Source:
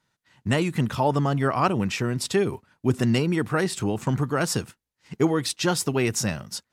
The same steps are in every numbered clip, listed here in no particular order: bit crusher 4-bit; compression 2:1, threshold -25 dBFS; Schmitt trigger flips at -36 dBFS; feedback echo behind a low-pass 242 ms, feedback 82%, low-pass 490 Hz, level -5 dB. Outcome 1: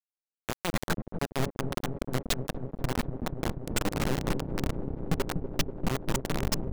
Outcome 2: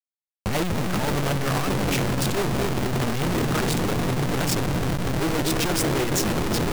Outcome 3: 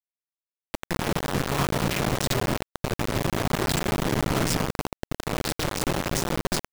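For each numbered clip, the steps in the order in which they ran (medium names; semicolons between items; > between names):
Schmitt trigger > bit crusher > compression > feedback echo behind a low-pass; feedback echo behind a low-pass > Schmitt trigger > bit crusher > compression; compression > Schmitt trigger > feedback echo behind a low-pass > bit crusher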